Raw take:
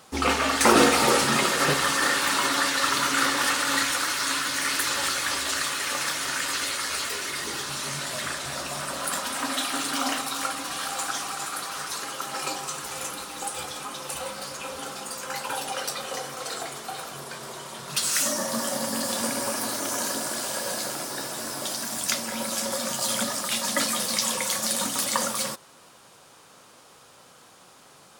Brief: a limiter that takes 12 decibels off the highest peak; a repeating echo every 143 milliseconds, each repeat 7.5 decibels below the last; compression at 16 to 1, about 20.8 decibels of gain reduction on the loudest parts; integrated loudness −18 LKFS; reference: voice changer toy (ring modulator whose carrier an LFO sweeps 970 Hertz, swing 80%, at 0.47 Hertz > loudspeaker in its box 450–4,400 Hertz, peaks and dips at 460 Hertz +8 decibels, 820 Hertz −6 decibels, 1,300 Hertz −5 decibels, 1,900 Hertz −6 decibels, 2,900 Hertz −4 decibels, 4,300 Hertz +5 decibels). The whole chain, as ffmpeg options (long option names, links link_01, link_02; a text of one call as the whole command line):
ffmpeg -i in.wav -af "acompressor=threshold=-34dB:ratio=16,alimiter=level_in=8dB:limit=-24dB:level=0:latency=1,volume=-8dB,aecho=1:1:143|286|429|572|715:0.422|0.177|0.0744|0.0312|0.0131,aeval=exprs='val(0)*sin(2*PI*970*n/s+970*0.8/0.47*sin(2*PI*0.47*n/s))':channel_layout=same,highpass=450,equalizer=frequency=460:width_type=q:width=4:gain=8,equalizer=frequency=820:width_type=q:width=4:gain=-6,equalizer=frequency=1300:width_type=q:width=4:gain=-5,equalizer=frequency=1900:width_type=q:width=4:gain=-6,equalizer=frequency=2900:width_type=q:width=4:gain=-4,equalizer=frequency=4300:width_type=q:width=4:gain=5,lowpass=frequency=4400:width=0.5412,lowpass=frequency=4400:width=1.3066,volume=28.5dB" out.wav